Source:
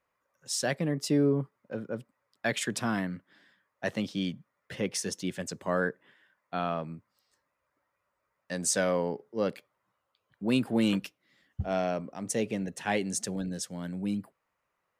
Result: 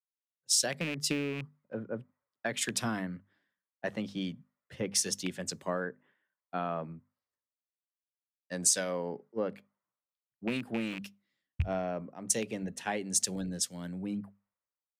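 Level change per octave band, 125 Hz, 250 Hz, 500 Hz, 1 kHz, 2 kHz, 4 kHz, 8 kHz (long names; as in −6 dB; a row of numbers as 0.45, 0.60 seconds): −4.5, −6.0, −5.0, −4.0, −3.5, +2.0, +4.5 decibels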